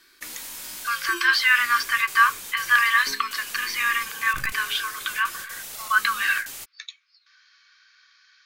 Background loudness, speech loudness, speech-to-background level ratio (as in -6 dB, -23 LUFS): -35.0 LUFS, -22.0 LUFS, 13.0 dB